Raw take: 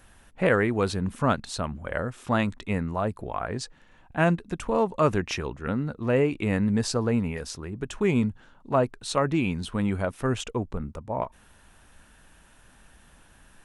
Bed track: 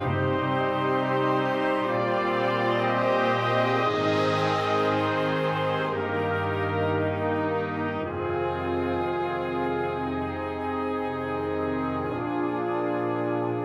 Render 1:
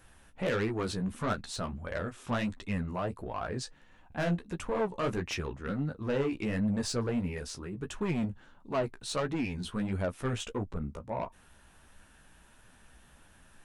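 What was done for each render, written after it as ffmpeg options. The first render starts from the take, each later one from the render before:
-af "asoftclip=type=tanh:threshold=0.0794,flanger=delay=9.5:depth=7.9:regen=-19:speed=1.5:shape=triangular"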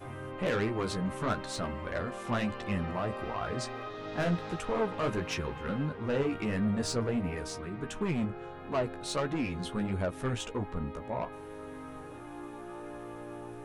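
-filter_complex "[1:a]volume=0.15[s0];[0:a][s0]amix=inputs=2:normalize=0"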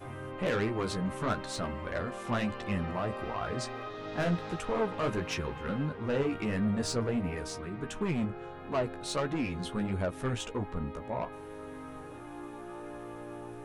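-af anull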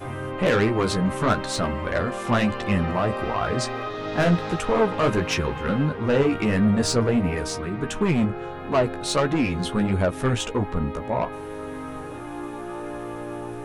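-af "volume=3.16"

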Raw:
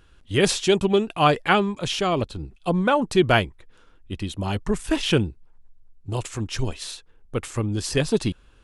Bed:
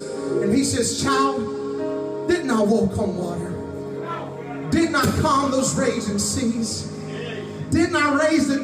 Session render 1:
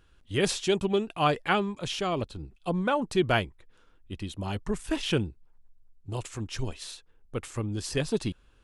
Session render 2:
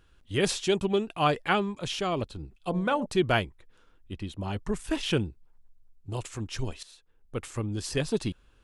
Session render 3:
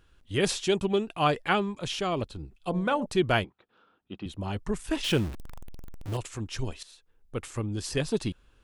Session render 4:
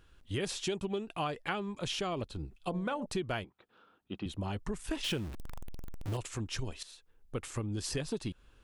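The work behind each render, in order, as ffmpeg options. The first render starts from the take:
-af "volume=0.473"
-filter_complex "[0:a]asettb=1/sr,asplit=3[s0][s1][s2];[s0]atrim=end=2.544[s3];[s1]atrim=start=2.54:end=3.06,asetpts=PTS-STARTPTS,afade=t=in:d=0.004:c=qsin,afade=t=out:st=0.516:d=0.004:c=qsin,bandreject=f=83.93:t=h:w=4,bandreject=f=167.86:t=h:w=4,bandreject=f=251.79:t=h:w=4,bandreject=f=335.72:t=h:w=4,bandreject=f=419.65:t=h:w=4,bandreject=f=503.58:t=h:w=4,bandreject=f=587.51:t=h:w=4,bandreject=f=671.44:t=h:w=4,bandreject=f=755.37:t=h:w=4,bandreject=f=839.3:t=h:w=4,bandreject=f=923.23:t=h:w=4[s4];[s2]atrim=start=3.056[s5];[s3][s4]acrossfade=d=0.004:c1=hsin:c2=qsin[s6];[s6][s5]acrossfade=d=0.004:c1=qsin:c2=hsin,asettb=1/sr,asplit=3[s7][s8][s9];[s7]atrim=end=4.134[s10];[s8]atrim=start=4.13:end=4.57,asetpts=PTS-STARTPTS,afade=t=in:d=0.004:c=qsin,afade=t=out:st=0.436:d=0.004:c=qsin,highshelf=f=4500:g=-7.5[s11];[s9]atrim=start=4.566[s12];[s10][s11]acrossfade=d=0.004:c1=hsin:c2=qsin[s13];[s13][s12]acrossfade=d=0.004:c1=qsin:c2=hsin,asplit=2[s14][s15];[s14]atrim=end=6.83,asetpts=PTS-STARTPTS,afade=t=out:st=6.826:d=0.004:c=hsin:silence=0.16788[s16];[s15]atrim=start=6.83,asetpts=PTS-STARTPTS,afade=t=in:d=0.57:silence=0.16788[s17];[s16][s17]concat=n=2:v=0:a=1"
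-filter_complex "[0:a]asettb=1/sr,asplit=3[s0][s1][s2];[s0]atrim=end=3.444[s3];[s1]atrim=start=3.44:end=4.26,asetpts=PTS-STARTPTS,afade=t=in:d=0.004:c=qsin,afade=t=out:st=0.816:d=0.004:c=qsin,highpass=190,equalizer=f=200:t=q:w=4:g=4,equalizer=f=760:t=q:w=4:g=6,equalizer=f=1300:t=q:w=4:g=6,equalizer=f=2000:t=q:w=4:g=-7,lowpass=f=4100:w=0.5412,lowpass=f=4100:w=1.3066[s4];[s2]atrim=start=4.256[s5];[s3][s4]acrossfade=d=0.004:c1=hsin:c2=qsin[s6];[s6][s5]acrossfade=d=0.004:c1=qsin:c2=hsin,asettb=1/sr,asplit=3[s7][s8][s9];[s7]atrim=end=5.044[s10];[s8]atrim=start=5.04:end=6.17,asetpts=PTS-STARTPTS,afade=t=in:d=0.004:c=qsin,afade=t=out:st=1.126:d=0.004:c=qsin,aeval=exprs='val(0)+0.5*0.0211*sgn(val(0))':c=same[s11];[s9]atrim=start=6.166[s12];[s10][s11]acrossfade=d=0.004:c1=hsin:c2=qsin[s13];[s13][s12]acrossfade=d=0.004:c1=qsin:c2=hsin"
-af "acompressor=threshold=0.0251:ratio=6"

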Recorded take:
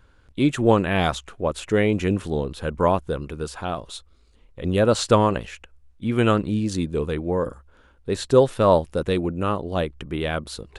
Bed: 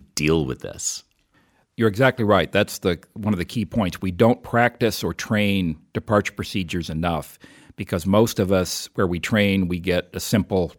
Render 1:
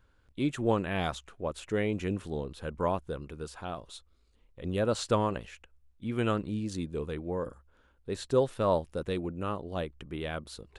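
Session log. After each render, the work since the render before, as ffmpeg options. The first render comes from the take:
-af "volume=0.316"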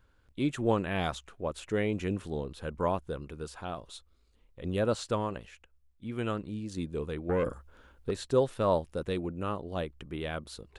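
-filter_complex "[0:a]asettb=1/sr,asplit=3[s0][s1][s2];[s0]atrim=end=7.294[s3];[s1]atrim=start=7.29:end=8.11,asetpts=PTS-STARTPTS,afade=t=in:d=0.004:c=qsin,afade=t=out:st=0.816:d=0.004:c=qsin,aeval=exprs='0.0668*sin(PI/2*1.58*val(0)/0.0668)':c=same[s4];[s2]atrim=start=8.106[s5];[s3][s4]acrossfade=d=0.004:c1=hsin:c2=qsin[s6];[s6][s5]acrossfade=d=0.004:c1=qsin:c2=hsin,asplit=3[s7][s8][s9];[s7]atrim=end=4.952[s10];[s8]atrim=start=4.948:end=6.772,asetpts=PTS-STARTPTS,volume=0.631[s11];[s9]atrim=start=6.768[s12];[s10][s11]acrossfade=d=0.004:c1=hsin:c2=hsin[s13];[s13][s12]acrossfade=d=0.004:c1=hsin:c2=hsin"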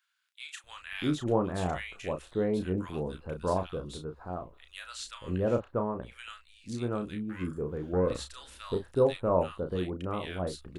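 -filter_complex "[0:a]asplit=2[s0][s1];[s1]adelay=33,volume=0.447[s2];[s0][s2]amix=inputs=2:normalize=0,acrossover=split=1500[s3][s4];[s3]adelay=640[s5];[s5][s4]amix=inputs=2:normalize=0"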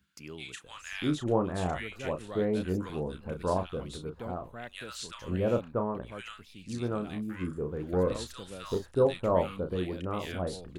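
-filter_complex "[1:a]volume=0.0531[s0];[0:a][s0]amix=inputs=2:normalize=0"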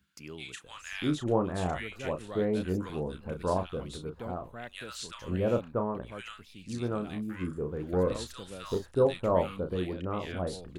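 -filter_complex "[0:a]asettb=1/sr,asplit=3[s0][s1][s2];[s0]atrim=end=9.934[s3];[s1]atrim=start=9.93:end=10.37,asetpts=PTS-STARTPTS,afade=t=in:d=0.004:c=qsin,afade=t=out:st=0.436:d=0.004:c=qsin,aemphasis=mode=reproduction:type=50fm[s4];[s2]atrim=start=10.366[s5];[s3][s4]acrossfade=d=0.004:c1=hsin:c2=qsin[s6];[s6][s5]acrossfade=d=0.004:c1=qsin:c2=hsin"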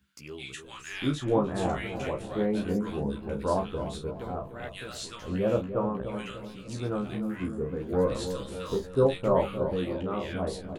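-filter_complex "[0:a]asplit=2[s0][s1];[s1]adelay=15,volume=0.668[s2];[s0][s2]amix=inputs=2:normalize=0,asplit=2[s3][s4];[s4]adelay=297,lowpass=f=910:p=1,volume=0.398,asplit=2[s5][s6];[s6]adelay=297,lowpass=f=910:p=1,volume=0.53,asplit=2[s7][s8];[s8]adelay=297,lowpass=f=910:p=1,volume=0.53,asplit=2[s9][s10];[s10]adelay=297,lowpass=f=910:p=1,volume=0.53,asplit=2[s11][s12];[s12]adelay=297,lowpass=f=910:p=1,volume=0.53,asplit=2[s13][s14];[s14]adelay=297,lowpass=f=910:p=1,volume=0.53[s15];[s5][s7][s9][s11][s13][s15]amix=inputs=6:normalize=0[s16];[s3][s16]amix=inputs=2:normalize=0"

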